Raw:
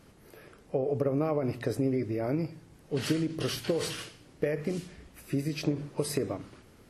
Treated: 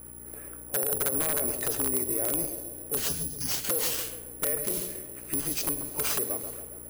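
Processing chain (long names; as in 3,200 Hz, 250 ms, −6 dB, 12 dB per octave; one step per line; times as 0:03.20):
sub-octave generator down 2 octaves, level −4 dB
gain on a spectral selection 0:03.08–0:03.51, 290–4,600 Hz −26 dB
low-pass that shuts in the quiet parts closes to 1,600 Hz, open at −28.5 dBFS
bass and treble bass −10 dB, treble +7 dB
in parallel at +1 dB: downward compressor 8 to 1, threshold −38 dBFS, peak gain reduction 13.5 dB
on the sum: wrap-around overflow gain 19.5 dB
hum with harmonics 60 Hz, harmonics 6, −48 dBFS −3 dB per octave
soft clipping −24.5 dBFS, distortion −15 dB
on a send: feedback echo with a band-pass in the loop 137 ms, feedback 65%, band-pass 500 Hz, level −7.5 dB
on the sum: bad sample-rate conversion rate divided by 4×, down none, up zero stuff
level −3.5 dB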